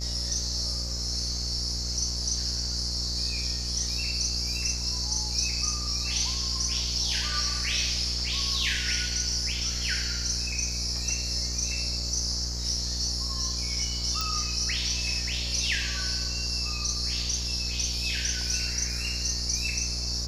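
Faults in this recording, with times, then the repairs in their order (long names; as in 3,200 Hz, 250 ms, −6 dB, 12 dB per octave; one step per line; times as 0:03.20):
mains buzz 60 Hz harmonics 37 −34 dBFS
0:14.21: click −14 dBFS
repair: click removal
hum removal 60 Hz, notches 37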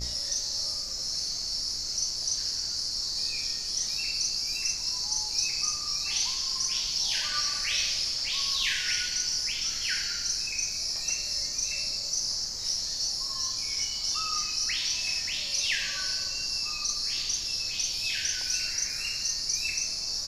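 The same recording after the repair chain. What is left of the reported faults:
none of them is left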